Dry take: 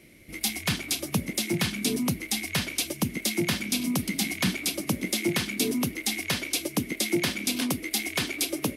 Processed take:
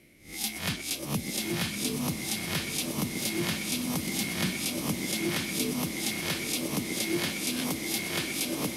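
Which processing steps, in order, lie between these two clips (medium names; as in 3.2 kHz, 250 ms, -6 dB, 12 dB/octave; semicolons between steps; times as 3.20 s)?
reverse spectral sustain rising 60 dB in 0.38 s; echo that smears into a reverb 931 ms, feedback 60%, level -6 dB; trim -6 dB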